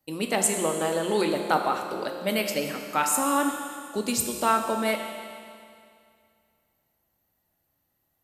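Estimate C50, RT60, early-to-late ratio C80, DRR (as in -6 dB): 4.5 dB, 2.3 s, 6.0 dB, 3.0 dB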